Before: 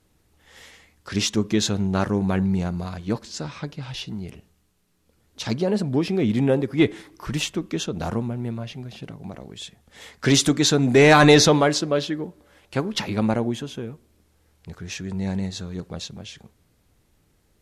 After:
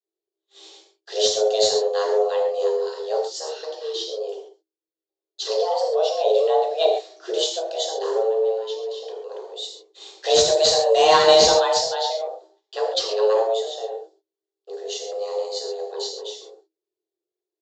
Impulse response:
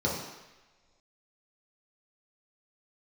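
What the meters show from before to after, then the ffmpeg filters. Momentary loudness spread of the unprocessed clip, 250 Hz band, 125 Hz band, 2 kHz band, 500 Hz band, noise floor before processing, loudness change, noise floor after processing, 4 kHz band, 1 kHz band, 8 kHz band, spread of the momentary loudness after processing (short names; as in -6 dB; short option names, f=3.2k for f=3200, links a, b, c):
20 LU, -19.5 dB, under -20 dB, -7.5 dB, +5.0 dB, -65 dBFS, +0.5 dB, under -85 dBFS, +4.0 dB, +4.0 dB, +0.5 dB, 17 LU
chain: -filter_complex "[0:a]agate=range=-32dB:threshold=-50dB:ratio=16:detection=peak,afreqshift=320,tiltshelf=f=640:g=4,aexciter=amount=13.6:drive=7.8:freq=3.4k,highshelf=f=2.8k:t=q:w=1.5:g=-8.5,aresample=16000,volume=6dB,asoftclip=hard,volume=-6dB,aresample=44100[a];[1:a]atrim=start_sample=2205,afade=t=out:st=0.16:d=0.01,atrim=end_sample=7497,asetrate=34398,aresample=44100[b];[a][b]afir=irnorm=-1:irlink=0,volume=-13dB"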